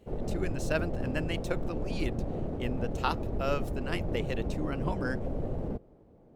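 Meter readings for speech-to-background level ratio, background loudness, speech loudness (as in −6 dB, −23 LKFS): 0.0 dB, −36.0 LKFS, −36.0 LKFS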